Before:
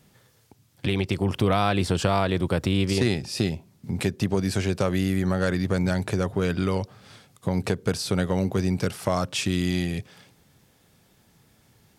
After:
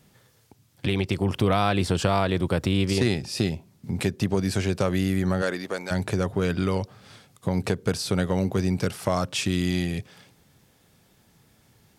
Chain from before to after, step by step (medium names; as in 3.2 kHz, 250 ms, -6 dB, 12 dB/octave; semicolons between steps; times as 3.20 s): 5.41–5.90 s: high-pass 250 Hz -> 590 Hz 12 dB/octave